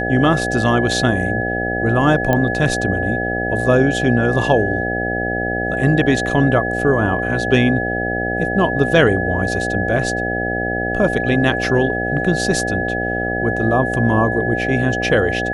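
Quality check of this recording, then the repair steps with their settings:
mains buzz 60 Hz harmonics 13 −23 dBFS
whistle 1,700 Hz −22 dBFS
0:02.33: click −5 dBFS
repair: click removal
hum removal 60 Hz, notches 13
notch filter 1,700 Hz, Q 30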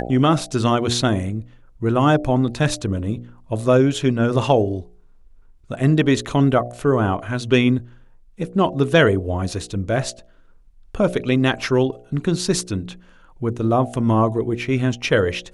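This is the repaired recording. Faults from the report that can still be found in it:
none of them is left

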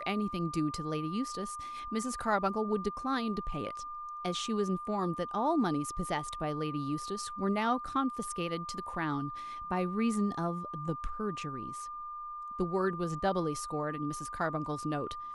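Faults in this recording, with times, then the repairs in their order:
whistle 1,200 Hz −39 dBFS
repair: notch filter 1,200 Hz, Q 30

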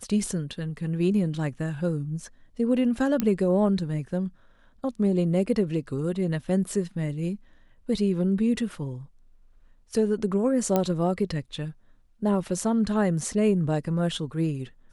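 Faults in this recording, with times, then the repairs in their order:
0:03.20: click −11 dBFS
0:10.76: click −10 dBFS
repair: click removal

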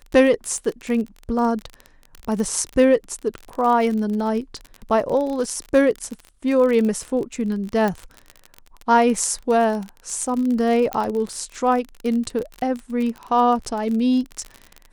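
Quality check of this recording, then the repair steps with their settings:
surface crackle 33 per second −25 dBFS
0:07.88: click
0:10.93: click −10 dBFS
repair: click removal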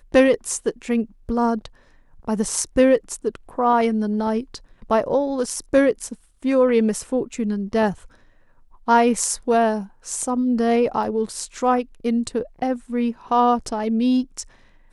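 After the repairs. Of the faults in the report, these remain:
0:10.93: click

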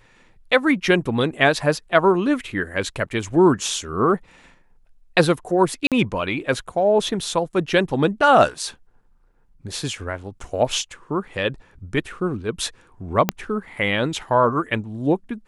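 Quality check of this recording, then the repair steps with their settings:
0:05.87–0:05.92: drop-out 47 ms
0:13.29: click −3 dBFS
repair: click removal
repair the gap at 0:05.87, 47 ms

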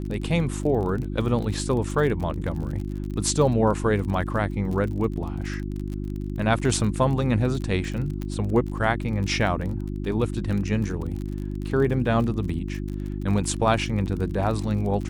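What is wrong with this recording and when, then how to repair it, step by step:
surface crackle 32 per second −31 dBFS
mains hum 50 Hz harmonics 7 −30 dBFS
0:08.22: click −19 dBFS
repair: click removal
hum removal 50 Hz, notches 7

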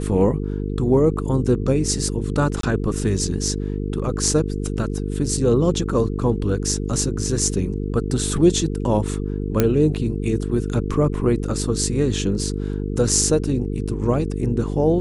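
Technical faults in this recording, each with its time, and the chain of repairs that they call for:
mains buzz 50 Hz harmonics 9 −25 dBFS
0:02.61–0:02.63: drop-out 23 ms
0:09.60: click −3 dBFS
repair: click removal
hum removal 50 Hz, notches 9
repair the gap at 0:02.61, 23 ms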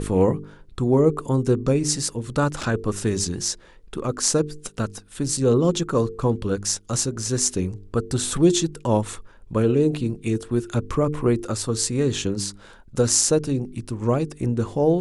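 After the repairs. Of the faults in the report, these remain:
none of them is left

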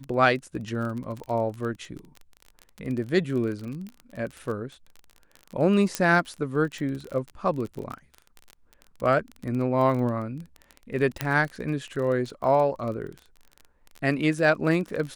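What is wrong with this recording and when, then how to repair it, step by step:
surface crackle 26 per second −31 dBFS
0:05.95: click −9 dBFS
0:11.21: click −10 dBFS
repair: click removal

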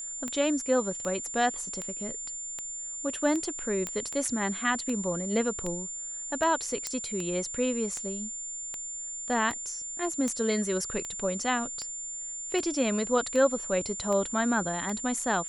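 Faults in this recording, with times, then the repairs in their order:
scratch tick 78 rpm −20 dBFS
whistle 7,200 Hz −35 dBFS
0:03.87: click −17 dBFS
0:06.87: click −16 dBFS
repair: click removal
notch filter 7,200 Hz, Q 30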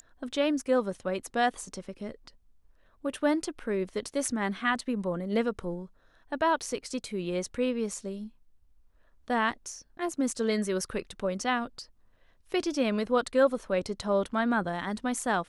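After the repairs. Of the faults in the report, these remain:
none of them is left

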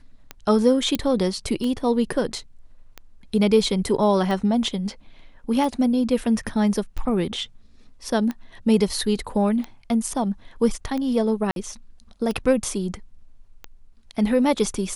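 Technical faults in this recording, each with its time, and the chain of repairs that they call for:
scratch tick 45 rpm −17 dBFS
0:00.95: click −8 dBFS
0:11.51–0:11.56: drop-out 52 ms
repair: click removal
repair the gap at 0:11.51, 52 ms

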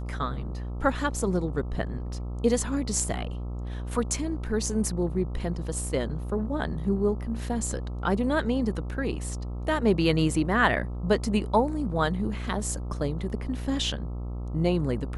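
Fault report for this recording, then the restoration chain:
mains buzz 60 Hz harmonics 22 −33 dBFS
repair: hum removal 60 Hz, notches 22

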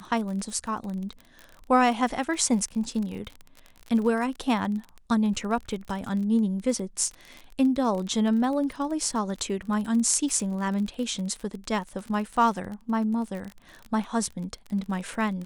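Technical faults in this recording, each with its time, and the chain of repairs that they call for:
surface crackle 35 per second −32 dBFS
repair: click removal

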